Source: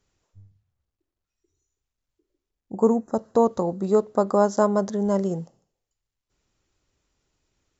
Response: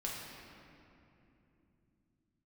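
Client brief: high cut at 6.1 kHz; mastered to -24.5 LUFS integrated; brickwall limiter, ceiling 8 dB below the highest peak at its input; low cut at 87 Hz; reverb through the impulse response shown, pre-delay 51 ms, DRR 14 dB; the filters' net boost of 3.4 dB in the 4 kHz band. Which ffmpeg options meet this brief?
-filter_complex "[0:a]highpass=87,lowpass=6100,equalizer=f=4000:t=o:g=6,alimiter=limit=0.188:level=0:latency=1,asplit=2[s0][s1];[1:a]atrim=start_sample=2205,adelay=51[s2];[s1][s2]afir=irnorm=-1:irlink=0,volume=0.168[s3];[s0][s3]amix=inputs=2:normalize=0,volume=1.19"

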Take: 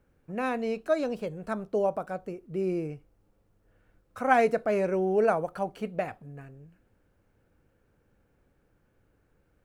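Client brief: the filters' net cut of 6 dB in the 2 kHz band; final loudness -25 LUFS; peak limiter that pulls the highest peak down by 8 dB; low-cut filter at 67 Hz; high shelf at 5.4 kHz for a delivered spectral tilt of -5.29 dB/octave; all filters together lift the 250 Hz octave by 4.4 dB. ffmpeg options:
-af "highpass=67,equalizer=f=250:t=o:g=6,equalizer=f=2000:t=o:g=-8,highshelf=f=5400:g=-6,volume=1.78,alimiter=limit=0.188:level=0:latency=1"

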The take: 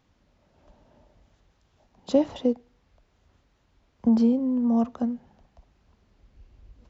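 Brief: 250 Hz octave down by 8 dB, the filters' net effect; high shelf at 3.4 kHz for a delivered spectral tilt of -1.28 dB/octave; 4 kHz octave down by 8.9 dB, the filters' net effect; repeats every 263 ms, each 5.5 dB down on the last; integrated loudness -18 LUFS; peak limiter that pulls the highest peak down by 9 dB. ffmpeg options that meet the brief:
-af "equalizer=f=250:t=o:g=-8.5,highshelf=f=3400:g=-3.5,equalizer=f=4000:t=o:g=-9,alimiter=limit=0.0841:level=0:latency=1,aecho=1:1:263|526|789|1052|1315|1578|1841:0.531|0.281|0.149|0.079|0.0419|0.0222|0.0118,volume=5.62"

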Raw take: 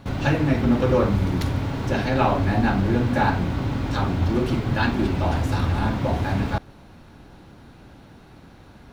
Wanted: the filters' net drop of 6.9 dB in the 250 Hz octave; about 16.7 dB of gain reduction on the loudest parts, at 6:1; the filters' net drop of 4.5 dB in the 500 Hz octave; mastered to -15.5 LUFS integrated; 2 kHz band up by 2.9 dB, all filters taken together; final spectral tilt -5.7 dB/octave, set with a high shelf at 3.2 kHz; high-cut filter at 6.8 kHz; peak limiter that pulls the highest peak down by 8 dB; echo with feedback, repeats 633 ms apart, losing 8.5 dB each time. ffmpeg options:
-af "lowpass=6800,equalizer=f=250:t=o:g=-8,equalizer=f=500:t=o:g=-3.5,equalizer=f=2000:t=o:g=6.5,highshelf=f=3200:g=-7,acompressor=threshold=0.0141:ratio=6,alimiter=level_in=2.51:limit=0.0631:level=0:latency=1,volume=0.398,aecho=1:1:633|1266|1899|2532:0.376|0.143|0.0543|0.0206,volume=20"

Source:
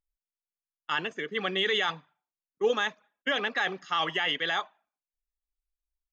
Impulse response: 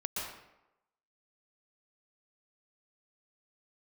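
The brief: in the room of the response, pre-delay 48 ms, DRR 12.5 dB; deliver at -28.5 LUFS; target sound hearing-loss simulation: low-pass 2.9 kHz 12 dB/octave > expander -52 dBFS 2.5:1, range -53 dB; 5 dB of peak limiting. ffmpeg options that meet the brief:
-filter_complex "[0:a]alimiter=limit=0.106:level=0:latency=1,asplit=2[s0][s1];[1:a]atrim=start_sample=2205,adelay=48[s2];[s1][s2]afir=irnorm=-1:irlink=0,volume=0.158[s3];[s0][s3]amix=inputs=2:normalize=0,lowpass=2900,agate=range=0.00224:threshold=0.00251:ratio=2.5,volume=1.5"

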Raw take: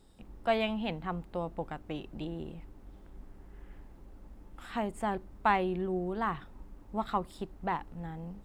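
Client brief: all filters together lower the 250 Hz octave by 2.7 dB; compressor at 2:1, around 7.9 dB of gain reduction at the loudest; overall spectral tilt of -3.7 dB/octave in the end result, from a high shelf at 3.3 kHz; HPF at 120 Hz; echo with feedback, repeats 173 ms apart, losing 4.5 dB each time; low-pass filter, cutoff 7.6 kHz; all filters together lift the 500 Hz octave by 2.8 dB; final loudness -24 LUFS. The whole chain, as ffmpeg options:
-af "highpass=120,lowpass=7600,equalizer=f=250:t=o:g=-5.5,equalizer=f=500:t=o:g=5.5,highshelf=f=3300:g=7,acompressor=threshold=0.02:ratio=2,aecho=1:1:173|346|519|692|865|1038|1211|1384|1557:0.596|0.357|0.214|0.129|0.0772|0.0463|0.0278|0.0167|0.01,volume=4.22"

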